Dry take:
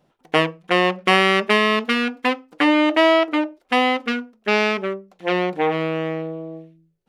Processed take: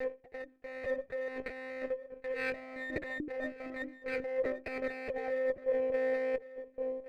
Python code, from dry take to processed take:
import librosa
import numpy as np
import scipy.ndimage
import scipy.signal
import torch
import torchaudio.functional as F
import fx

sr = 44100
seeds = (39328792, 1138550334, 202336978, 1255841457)

p1 = fx.block_reorder(x, sr, ms=212.0, group=3)
p2 = scipy.signal.sosfilt(scipy.signal.butter(2, 170.0, 'highpass', fs=sr, output='sos'), p1)
p3 = fx.hum_notches(p2, sr, base_hz=60, count=5)
p4 = fx.over_compress(p3, sr, threshold_db=-26.0, ratio=-1.0)
p5 = fx.formant_cascade(p4, sr, vowel='e')
p6 = p5 + fx.echo_single(p5, sr, ms=1121, db=-16.5, dry=0)
p7 = fx.lpc_monotone(p6, sr, seeds[0], pitch_hz=260.0, order=16)
y = fx.running_max(p7, sr, window=3)